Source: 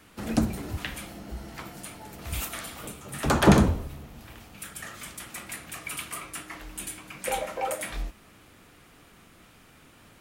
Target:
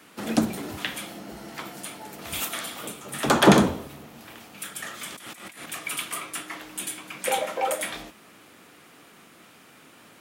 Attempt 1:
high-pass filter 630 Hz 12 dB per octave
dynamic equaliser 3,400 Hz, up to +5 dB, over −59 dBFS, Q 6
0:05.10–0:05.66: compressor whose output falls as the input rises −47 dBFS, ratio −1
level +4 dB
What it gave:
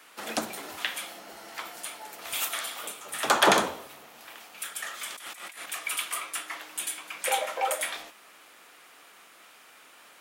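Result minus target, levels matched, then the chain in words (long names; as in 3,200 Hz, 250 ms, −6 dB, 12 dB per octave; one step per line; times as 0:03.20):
250 Hz band −11.0 dB
high-pass filter 200 Hz 12 dB per octave
dynamic equaliser 3,400 Hz, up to +5 dB, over −59 dBFS, Q 6
0:05.10–0:05.66: compressor whose output falls as the input rises −47 dBFS, ratio −1
level +4 dB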